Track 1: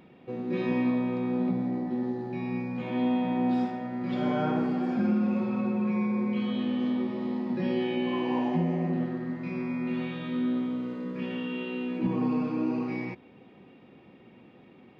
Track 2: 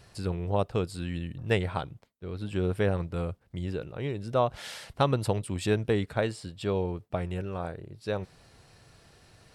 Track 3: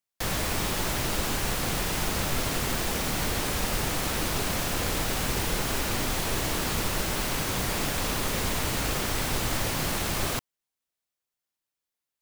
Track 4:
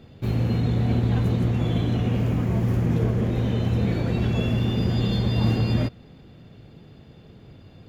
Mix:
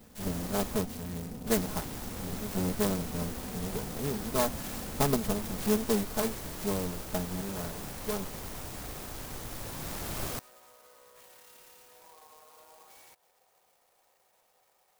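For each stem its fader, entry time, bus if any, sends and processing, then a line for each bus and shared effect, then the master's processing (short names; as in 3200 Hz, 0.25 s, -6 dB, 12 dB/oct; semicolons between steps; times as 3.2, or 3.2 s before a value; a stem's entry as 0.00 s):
-6.5 dB, 0.00 s, no send, inverse Chebyshev high-pass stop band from 300 Hz; compressor, threshold -46 dBFS, peak gain reduction 16 dB
-0.5 dB, 0.00 s, no send, minimum comb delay 4.7 ms
-6.5 dB, 0.00 s, muted 0.78–1.47, no send, auto duck -6 dB, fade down 0.25 s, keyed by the second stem
-11.5 dB, 0.00 s, no send, comb 3.9 ms, depth 73%; compressor 2.5:1, threshold -34 dBFS, peak gain reduction 11.5 dB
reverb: off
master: clock jitter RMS 0.11 ms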